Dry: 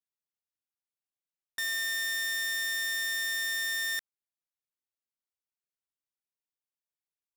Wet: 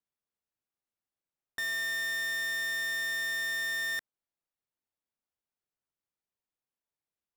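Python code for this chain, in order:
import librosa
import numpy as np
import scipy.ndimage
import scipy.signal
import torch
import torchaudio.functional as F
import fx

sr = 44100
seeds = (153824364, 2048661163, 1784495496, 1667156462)

y = fx.high_shelf(x, sr, hz=2100.0, db=-12.0)
y = y * 10.0 ** (5.5 / 20.0)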